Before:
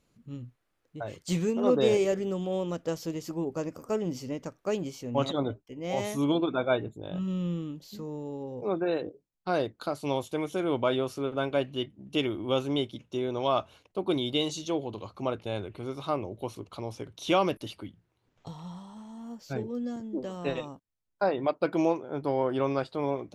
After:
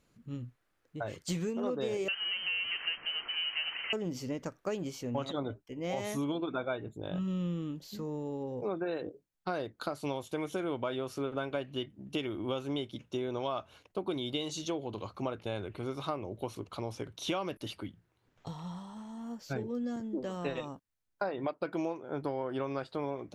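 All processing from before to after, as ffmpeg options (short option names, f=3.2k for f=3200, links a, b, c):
-filter_complex "[0:a]asettb=1/sr,asplit=3[a][b][c];[a]atrim=end=2.084[d];[b]atrim=start=2.08:end=3.93,asetpts=PTS-STARTPTS,afade=t=in:d=0.004:c=qsin,afade=t=out:st=1.846:d=0.004:c=qsin,aeval=exprs='val(0)+0.5*0.0211*sgn(val(0))':c=same,highpass=350,lowpass=f=2.8k:t=q:w=0.5098,lowpass=f=2.8k:t=q:w=0.6013,lowpass=f=2.8k:t=q:w=0.9,lowpass=f=2.8k:t=q:w=2.563,afreqshift=-3300[e];[c]atrim=start=3.926[f];[d][e]acrossfade=d=0.004:c1=hsin:c2=qsin[g];[g][f]acrossfade=d=0.004:c1=qsin:c2=hsin,equalizer=f=1.6k:t=o:w=0.77:g=3.5,acompressor=threshold=-31dB:ratio=6"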